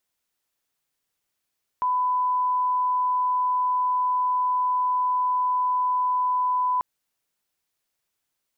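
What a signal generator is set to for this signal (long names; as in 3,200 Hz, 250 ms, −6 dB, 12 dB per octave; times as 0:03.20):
line-up tone −20 dBFS 4.99 s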